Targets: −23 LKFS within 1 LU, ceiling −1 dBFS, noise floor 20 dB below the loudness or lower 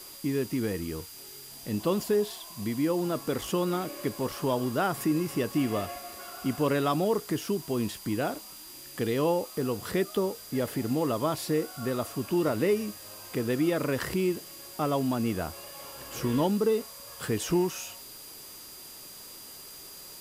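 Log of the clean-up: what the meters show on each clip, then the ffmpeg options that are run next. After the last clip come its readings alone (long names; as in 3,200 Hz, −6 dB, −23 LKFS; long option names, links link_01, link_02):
interfering tone 4,800 Hz; level of the tone −50 dBFS; background noise floor −46 dBFS; target noise floor −50 dBFS; integrated loudness −29.5 LKFS; sample peak −14.5 dBFS; target loudness −23.0 LKFS
→ -af "bandreject=frequency=4800:width=30"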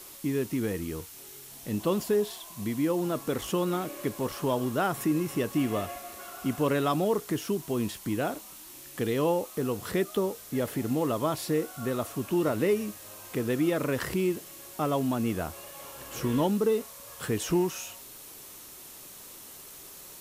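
interfering tone none found; background noise floor −47 dBFS; target noise floor −50 dBFS
→ -af "afftdn=noise_reduction=6:noise_floor=-47"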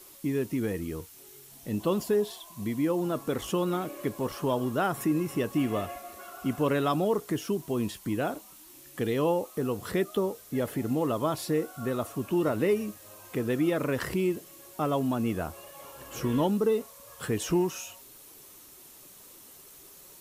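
background noise floor −51 dBFS; integrated loudness −29.5 LKFS; sample peak −15.0 dBFS; target loudness −23.0 LKFS
→ -af "volume=6.5dB"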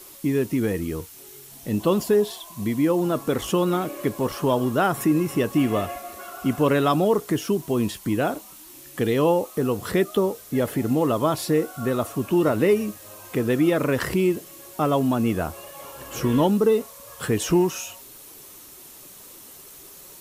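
integrated loudness −23.0 LKFS; sample peak −8.5 dBFS; background noise floor −45 dBFS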